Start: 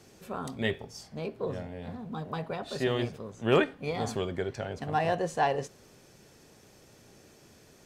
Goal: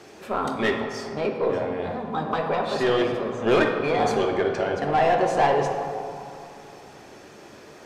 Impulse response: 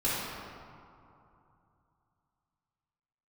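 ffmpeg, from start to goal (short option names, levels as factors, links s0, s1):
-filter_complex "[0:a]asplit=2[s0][s1];[s1]highpass=f=720:p=1,volume=12.6,asoftclip=type=tanh:threshold=0.282[s2];[s0][s2]amix=inputs=2:normalize=0,lowpass=f=1600:p=1,volume=0.501,asplit=2[s3][s4];[1:a]atrim=start_sample=2205[s5];[s4][s5]afir=irnorm=-1:irlink=0,volume=0.282[s6];[s3][s6]amix=inputs=2:normalize=0,volume=0.794"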